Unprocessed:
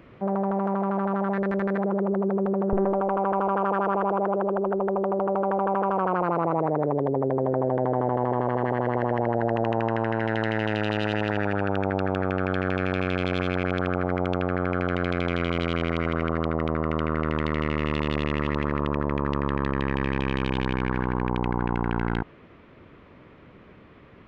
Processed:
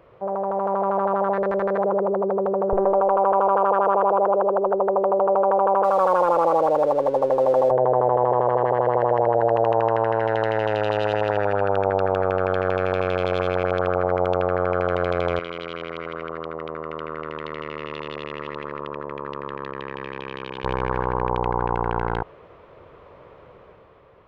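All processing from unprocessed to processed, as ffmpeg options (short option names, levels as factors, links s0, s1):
-filter_complex "[0:a]asettb=1/sr,asplit=3[s0][s1][s2];[s0]atrim=end=5.844[s3];[s1]atrim=start=5.84:end=7.71,asetpts=PTS-STARTPTS,afade=t=in:d=0.004:c=qsin,afade=t=out:st=1.866:d=0.004:c=qsin,highpass=56,aecho=1:1:3.6:0.59,atrim=end_sample=82467,aeval=exprs='sgn(val(0))*max(abs(val(0))-0.00841,0)':c=same[s4];[s2]atrim=start=7.706[s5];[s3][s4]acrossfade=d=0.004:c1=hsin:c2=qsin[s6];[s6][s5]acrossfade=d=0.004:c1=qsin:c2=hsin,asettb=1/sr,asplit=3[s7][s8][s9];[s7]atrim=end=15.394[s10];[s8]atrim=start=15.39:end=20.64,asetpts=PTS-STARTPTS,afade=t=in:d=0.004:c=qsin,afade=t=out:st=5.246:d=0.004:c=qsin,highpass=240,lowpass=4300,equalizer=f=690:w=0.76:g=-13.5[s11];[s9]atrim=start=20.636[s12];[s10][s11]acrossfade=d=0.004:c1=hsin:c2=qsin[s13];[s13][s12]acrossfade=d=0.004:c1=qsin:c2=hsin,equalizer=f=250:t=o:w=1:g=-12,equalizer=f=500:t=o:w=1:g=10,equalizer=f=1000:t=o:w=1:g=6,equalizer=f=2000:t=o:w=1:g=-4,dynaudnorm=f=100:g=13:m=1.88,volume=0.596"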